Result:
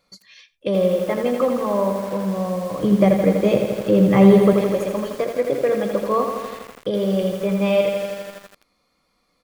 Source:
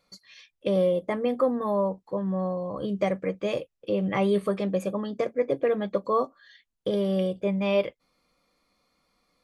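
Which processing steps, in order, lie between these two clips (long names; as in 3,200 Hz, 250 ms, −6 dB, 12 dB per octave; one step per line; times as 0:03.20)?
0:02.83–0:04.53: low-shelf EQ 490 Hz +10.5 dB
single-tap delay 92 ms −22 dB
feedback echo at a low word length 82 ms, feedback 80%, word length 7 bits, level −6 dB
level +3.5 dB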